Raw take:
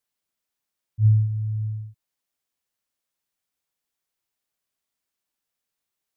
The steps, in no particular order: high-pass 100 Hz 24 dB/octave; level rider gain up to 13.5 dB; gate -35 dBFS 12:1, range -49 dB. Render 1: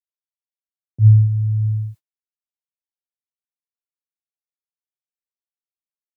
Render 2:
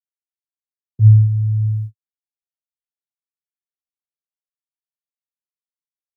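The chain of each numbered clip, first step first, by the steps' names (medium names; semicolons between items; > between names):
level rider > gate > high-pass; gate > high-pass > level rider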